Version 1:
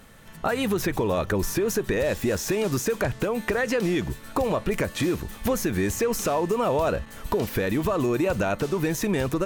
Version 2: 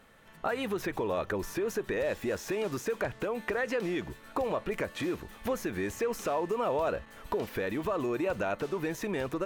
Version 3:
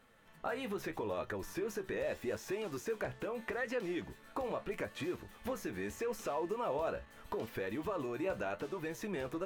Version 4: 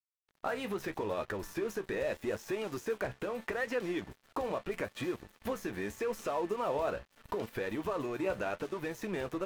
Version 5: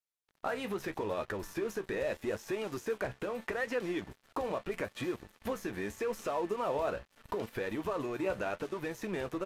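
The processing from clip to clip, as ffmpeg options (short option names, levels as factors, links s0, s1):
-af "bass=f=250:g=-8,treble=f=4000:g=-8,volume=0.531"
-af "flanger=delay=8:depth=7.9:regen=55:speed=0.79:shape=sinusoidal,volume=0.75"
-af "aeval=exprs='sgn(val(0))*max(abs(val(0))-0.00211,0)':c=same,volume=1.58"
-af "aresample=32000,aresample=44100"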